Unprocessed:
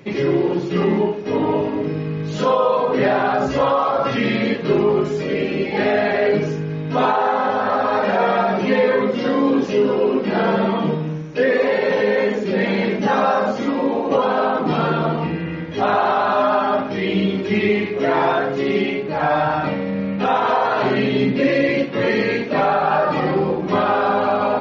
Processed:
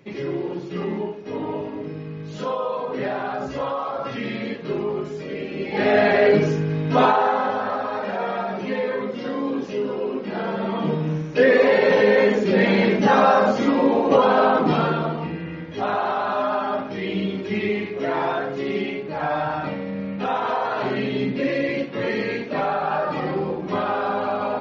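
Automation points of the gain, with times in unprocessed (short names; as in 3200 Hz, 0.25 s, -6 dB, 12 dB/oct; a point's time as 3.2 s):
5.51 s -9 dB
5.98 s +1.5 dB
6.99 s +1.5 dB
7.93 s -8.5 dB
10.56 s -8.5 dB
11.14 s +1.5 dB
14.6 s +1.5 dB
15.15 s -6 dB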